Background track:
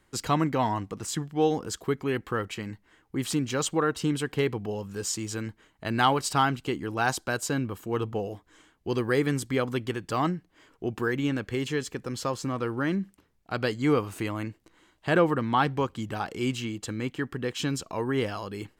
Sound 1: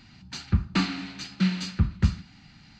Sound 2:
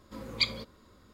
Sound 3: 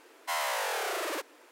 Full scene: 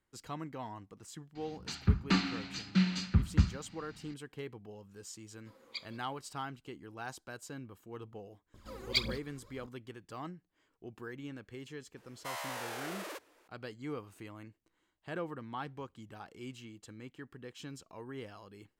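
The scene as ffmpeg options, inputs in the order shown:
ffmpeg -i bed.wav -i cue0.wav -i cue1.wav -i cue2.wav -filter_complex "[2:a]asplit=2[link_01][link_02];[0:a]volume=-17dB[link_03];[link_01]highpass=370[link_04];[link_02]aphaser=in_gain=1:out_gain=1:delay=2.9:decay=0.75:speed=1.8:type=triangular[link_05];[1:a]atrim=end=2.79,asetpts=PTS-STARTPTS,volume=-4dB,afade=type=in:duration=0.004:curve=hsin,afade=type=out:start_time=2.786:duration=0.004:curve=hsin,adelay=1350[link_06];[link_04]atrim=end=1.13,asetpts=PTS-STARTPTS,volume=-15.5dB,afade=type=in:duration=0.004:curve=hsin,afade=type=out:start_time=1.126:duration=0.004:curve=hsin,adelay=5340[link_07];[link_05]atrim=end=1.13,asetpts=PTS-STARTPTS,volume=-5dB,afade=type=in:duration=0.004:curve=hsin,afade=type=out:start_time=1.126:duration=0.004:curve=hsin,adelay=8540[link_08];[3:a]atrim=end=1.51,asetpts=PTS-STARTPTS,volume=-9.5dB,afade=type=in:duration=0.004:curve=hsin,afade=type=out:start_time=1.506:duration=0.004:curve=hsin,adelay=11970[link_09];[link_03][link_06][link_07][link_08][link_09]amix=inputs=5:normalize=0" out.wav

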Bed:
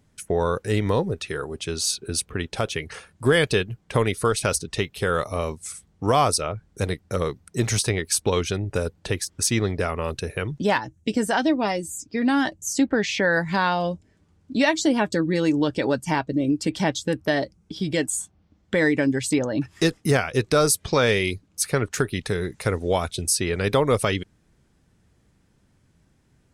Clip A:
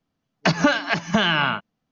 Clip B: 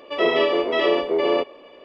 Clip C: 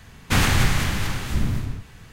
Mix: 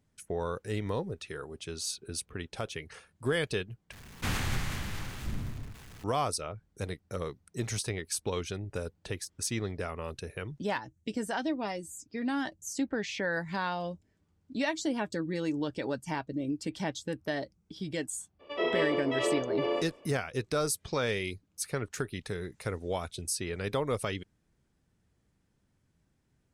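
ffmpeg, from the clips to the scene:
ffmpeg -i bed.wav -i cue0.wav -i cue1.wav -i cue2.wav -filter_complex "[0:a]volume=-11dB[link_01];[3:a]aeval=exprs='val(0)+0.5*0.0211*sgn(val(0))':channel_layout=same[link_02];[link_01]asplit=2[link_03][link_04];[link_03]atrim=end=3.924[link_05];[link_02]atrim=end=2.12,asetpts=PTS-STARTPTS,volume=-13.5dB[link_06];[link_04]atrim=start=6.036[link_07];[2:a]atrim=end=1.84,asetpts=PTS-STARTPTS,volume=-10.5dB,afade=type=in:duration=0.02,afade=type=out:start_time=1.82:duration=0.02,adelay=18390[link_08];[link_05][link_06]acrossfade=duration=0.004:curve1=hsin:curve2=hsin[link_09];[link_09][link_07]acrossfade=duration=0.004:curve1=hsin:curve2=hsin[link_10];[link_10][link_08]amix=inputs=2:normalize=0" out.wav

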